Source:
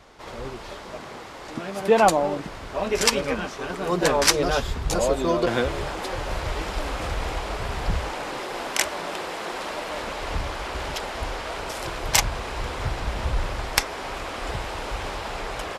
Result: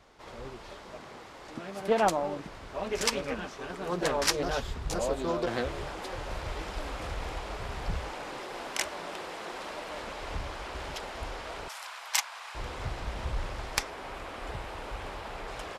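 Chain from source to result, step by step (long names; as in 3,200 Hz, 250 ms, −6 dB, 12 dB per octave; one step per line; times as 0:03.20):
0:11.68–0:12.55: high-pass filter 840 Hz 24 dB per octave
0:13.90–0:15.48: parametric band 5,800 Hz −4.5 dB 1.5 octaves
highs frequency-modulated by the lows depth 0.34 ms
level −8 dB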